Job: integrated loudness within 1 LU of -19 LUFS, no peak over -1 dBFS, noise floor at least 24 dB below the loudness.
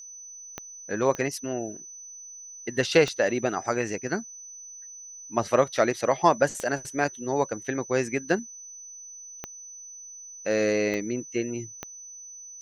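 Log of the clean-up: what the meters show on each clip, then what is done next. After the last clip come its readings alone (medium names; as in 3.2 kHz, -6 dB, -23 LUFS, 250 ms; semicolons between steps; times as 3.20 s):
clicks found 7; steady tone 6 kHz; tone level -41 dBFS; loudness -26.5 LUFS; peak level -5.5 dBFS; loudness target -19.0 LUFS
-> de-click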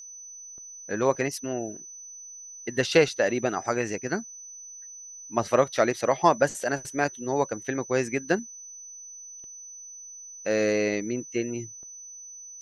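clicks found 0; steady tone 6 kHz; tone level -41 dBFS
-> band-stop 6 kHz, Q 30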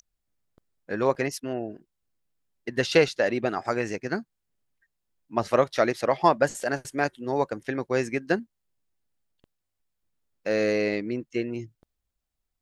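steady tone not found; loudness -26.5 LUFS; peak level -5.5 dBFS; loudness target -19.0 LUFS
-> trim +7.5 dB; peak limiter -1 dBFS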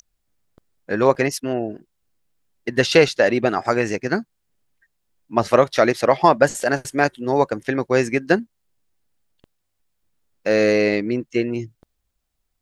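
loudness -19.5 LUFS; peak level -1.0 dBFS; noise floor -74 dBFS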